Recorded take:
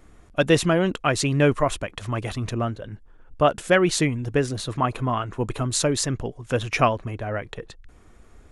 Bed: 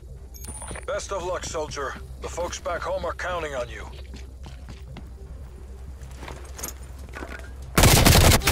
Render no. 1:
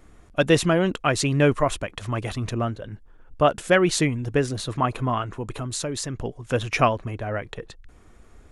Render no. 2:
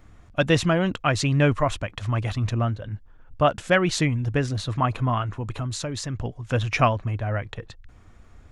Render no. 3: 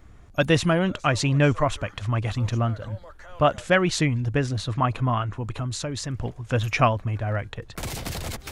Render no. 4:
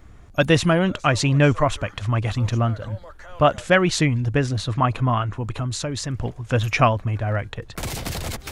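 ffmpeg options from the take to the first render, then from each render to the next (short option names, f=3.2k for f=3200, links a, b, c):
-filter_complex "[0:a]asettb=1/sr,asplit=3[a][b][c];[a]atrim=end=5.274[d];[b]atrim=start=5.27:end=6.2,asetpts=PTS-STARTPTS,afade=t=in:d=0.004:c=qsin,afade=t=out:st=0.926:d=0.004:c=qsin,acompressor=threshold=-30dB:ratio=2:attack=3.2:release=140:knee=1:detection=peak[e];[c]atrim=start=6.196[f];[d][e]acrossfade=d=0.004:c1=hsin:c2=qsin[g];[g][f]acrossfade=d=0.004:c1=qsin:c2=hsin"
-af "equalizer=f=100:t=o:w=0.67:g=7,equalizer=f=400:t=o:w=0.67:g=-6,equalizer=f=10k:t=o:w=0.67:g=-10"
-filter_complex "[1:a]volume=-17dB[a];[0:a][a]amix=inputs=2:normalize=0"
-af "volume=3dB,alimiter=limit=-3dB:level=0:latency=1"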